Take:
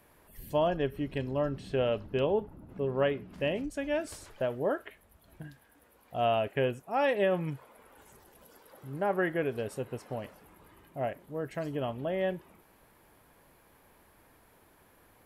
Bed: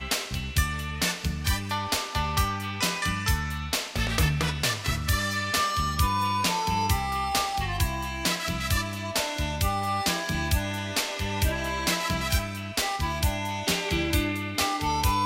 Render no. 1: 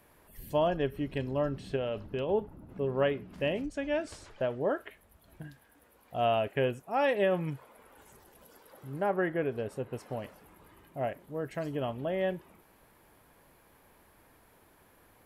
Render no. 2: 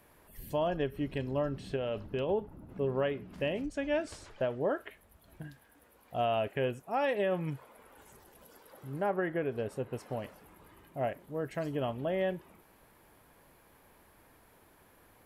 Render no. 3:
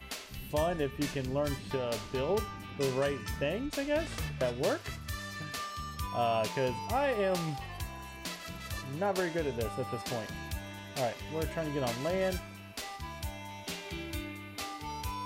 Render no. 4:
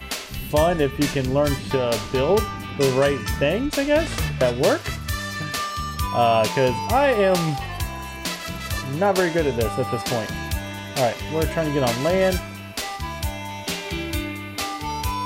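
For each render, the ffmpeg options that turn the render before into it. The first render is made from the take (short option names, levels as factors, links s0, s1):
-filter_complex "[0:a]asettb=1/sr,asplit=3[s0][s1][s2];[s0]atrim=end=1.764[s3];[s1]atrim=start=1.76:end=2.29,asetpts=PTS-STARTPTS,afade=t=in:d=0.004:c=qsin,afade=t=out:st=0.526:d=0.004:c=qsin,acompressor=threshold=0.0355:ratio=6:attack=3.2:release=140:knee=1:detection=peak[s4];[s2]atrim=start=2.286[s5];[s3][s4]acrossfade=d=0.004:c1=hsin:c2=qsin[s6];[s6][s5]acrossfade=d=0.004:c1=qsin:c2=hsin,asettb=1/sr,asplit=3[s7][s8][s9];[s7]atrim=end=3.674[s10];[s8]atrim=start=3.67:end=4.76,asetpts=PTS-STARTPTS,afade=t=in:d=0.004:c=qsin,afade=t=out:st=1.086:d=0.004:c=qsin,lowpass=6900[s11];[s9]atrim=start=4.756[s12];[s10][s11]acrossfade=d=0.004:c1=hsin:c2=qsin[s13];[s13][s12]acrossfade=d=0.004:c1=qsin:c2=hsin,asettb=1/sr,asplit=3[s14][s15][s16];[s14]atrim=end=9.104[s17];[s15]atrim=start=9.1:end=9.93,asetpts=PTS-STARTPTS,afade=t=in:d=0.004:c=qsin,afade=t=out:st=0.826:d=0.004:c=qsin,highshelf=f=2700:g=-8[s18];[s16]atrim=start=9.926[s19];[s17][s18]acrossfade=d=0.004:c1=hsin:c2=qsin[s20];[s20][s19]acrossfade=d=0.004:c1=qsin:c2=hsin"
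-af "alimiter=limit=0.0794:level=0:latency=1:release=207"
-filter_complex "[1:a]volume=0.211[s0];[0:a][s0]amix=inputs=2:normalize=0"
-af "volume=3.98"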